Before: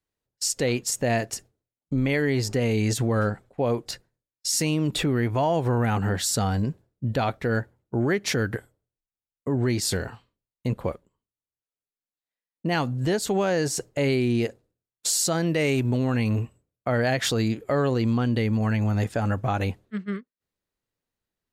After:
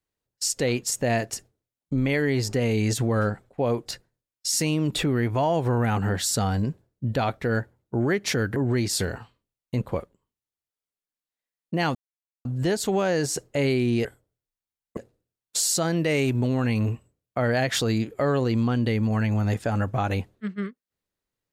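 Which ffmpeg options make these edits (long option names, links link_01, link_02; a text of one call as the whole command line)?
ffmpeg -i in.wav -filter_complex "[0:a]asplit=5[link_01][link_02][link_03][link_04][link_05];[link_01]atrim=end=8.562[link_06];[link_02]atrim=start=9.478:end=12.87,asetpts=PTS-STARTPTS,afade=type=out:start_time=3.388:duration=0.004:curve=hsin,apad=pad_dur=0.5[link_07];[link_03]atrim=start=12.87:end=14.472,asetpts=PTS-STARTPTS,afade=type=in:duration=0.004:curve=hsin[link_08];[link_04]atrim=start=8.558:end=9.482[link_09];[link_05]atrim=start=14.468[link_10];[link_07][link_08]concat=n=2:v=0:a=1[link_11];[link_06][link_11]acrossfade=duration=0.004:curve1=hsin:curve2=hsin[link_12];[link_12][link_09]acrossfade=duration=0.004:curve1=hsin:curve2=hsin[link_13];[link_13][link_10]acrossfade=duration=0.004:curve1=hsin:curve2=hsin" out.wav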